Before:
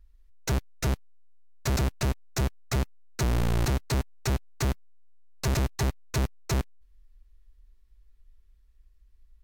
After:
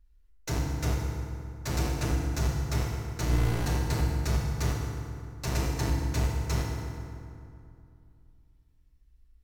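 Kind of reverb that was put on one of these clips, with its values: FDN reverb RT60 2.5 s, low-frequency decay 1.25×, high-frequency decay 0.6×, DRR -3 dB; trim -6 dB

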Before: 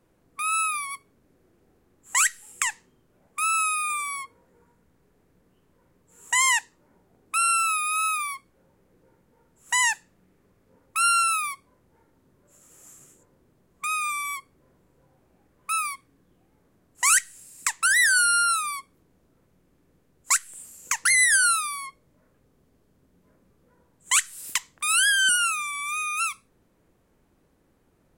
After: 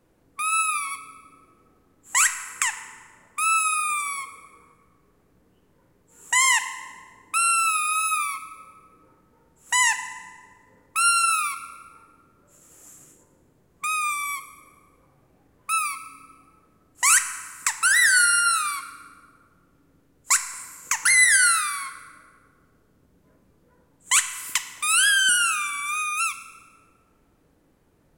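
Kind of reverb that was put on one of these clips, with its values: FDN reverb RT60 1.7 s, low-frequency decay 1.25×, high-frequency decay 0.65×, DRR 8.5 dB; trim +1.5 dB

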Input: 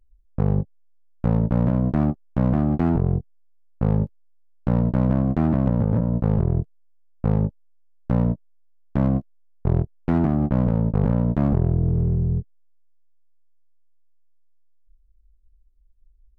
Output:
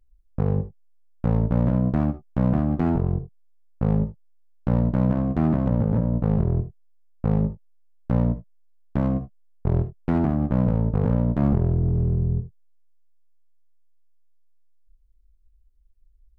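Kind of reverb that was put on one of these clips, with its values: gated-style reverb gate 90 ms rising, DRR 11.5 dB; trim -1.5 dB

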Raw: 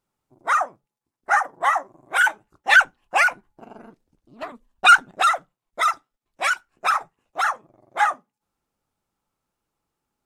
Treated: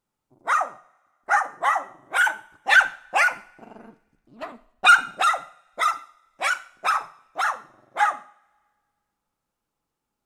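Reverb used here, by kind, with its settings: two-slope reverb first 0.48 s, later 1.8 s, from -24 dB, DRR 11 dB; trim -2 dB

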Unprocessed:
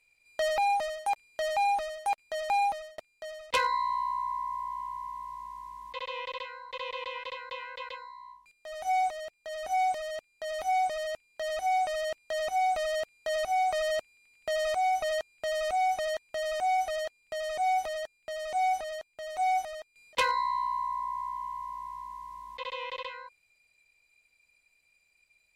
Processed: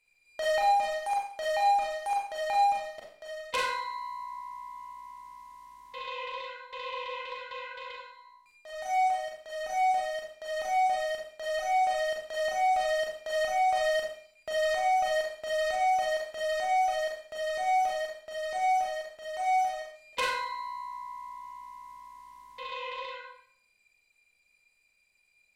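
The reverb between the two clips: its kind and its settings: Schroeder reverb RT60 0.56 s, combs from 30 ms, DRR -2 dB; trim -4.5 dB

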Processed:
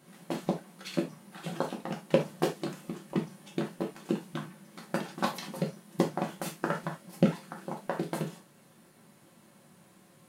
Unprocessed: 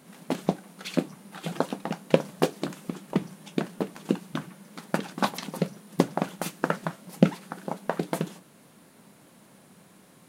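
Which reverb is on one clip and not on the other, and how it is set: gated-style reverb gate 100 ms falling, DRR 0 dB; trim -7 dB

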